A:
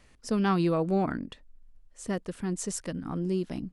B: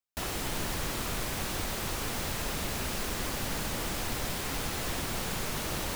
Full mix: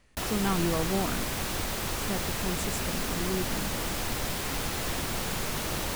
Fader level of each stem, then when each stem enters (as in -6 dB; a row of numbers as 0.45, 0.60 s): -3.5, +2.0 dB; 0.00, 0.00 s